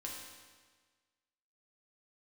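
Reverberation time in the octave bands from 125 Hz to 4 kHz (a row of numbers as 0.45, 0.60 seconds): 1.5, 1.5, 1.5, 1.5, 1.4, 1.4 seconds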